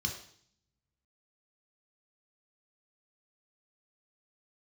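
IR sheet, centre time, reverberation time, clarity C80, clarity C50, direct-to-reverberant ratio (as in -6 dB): 21 ms, 0.60 s, 10.5 dB, 7.0 dB, 2.0 dB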